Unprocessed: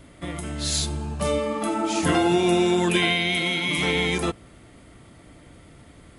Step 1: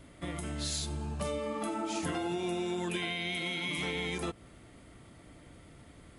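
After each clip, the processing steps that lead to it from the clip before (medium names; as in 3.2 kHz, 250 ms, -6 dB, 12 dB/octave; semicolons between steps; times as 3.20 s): compression, threshold -26 dBFS, peak gain reduction 9.5 dB; trim -5.5 dB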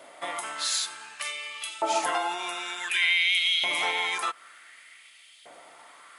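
LFO high-pass saw up 0.55 Hz 640–3400 Hz; trim +8 dB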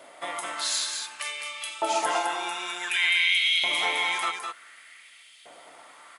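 delay 208 ms -5.5 dB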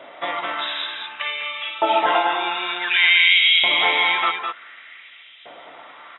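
brick-wall FIR low-pass 3.9 kHz; trim +8 dB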